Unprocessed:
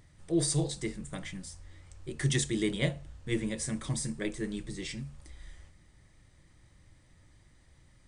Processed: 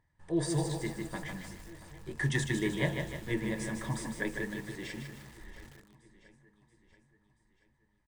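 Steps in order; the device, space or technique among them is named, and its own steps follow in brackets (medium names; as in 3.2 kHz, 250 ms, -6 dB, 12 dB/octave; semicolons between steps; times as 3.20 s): inside a helmet (treble shelf 3.4 kHz -7.5 dB; small resonant body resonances 940/1700 Hz, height 14 dB, ringing for 20 ms); gate -54 dBFS, range -14 dB; 4.51–5.41 s: high-pass 110 Hz 6 dB/octave; feedback delay 680 ms, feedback 53%, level -17.5 dB; bit-crushed delay 153 ms, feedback 55%, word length 8-bit, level -5 dB; trim -2.5 dB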